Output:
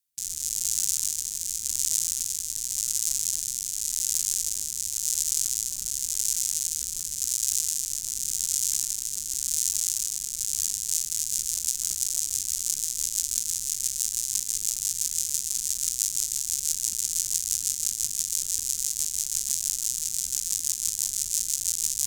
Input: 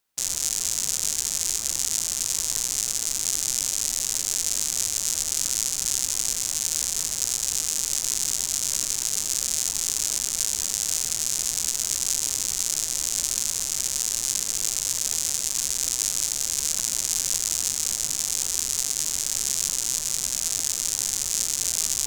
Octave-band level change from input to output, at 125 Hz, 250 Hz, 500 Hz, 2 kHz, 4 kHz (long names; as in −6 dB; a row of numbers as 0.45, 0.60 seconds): can't be measured, below −10 dB, below −20 dB, −11.5 dB, −5.0 dB